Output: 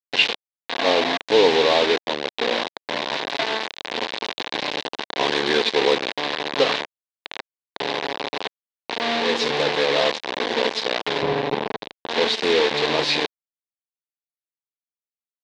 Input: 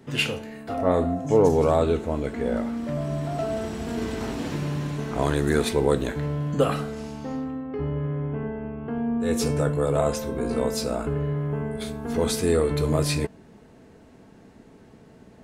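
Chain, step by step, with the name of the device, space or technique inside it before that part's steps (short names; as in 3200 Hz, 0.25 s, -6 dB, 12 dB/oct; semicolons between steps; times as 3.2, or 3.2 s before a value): hand-held game console (bit-crush 4-bit; speaker cabinet 460–4500 Hz, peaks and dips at 640 Hz -5 dB, 1300 Hz -10 dB, 3800 Hz +6 dB); 11.22–12.07 tilt -3.5 dB/oct; gain +6.5 dB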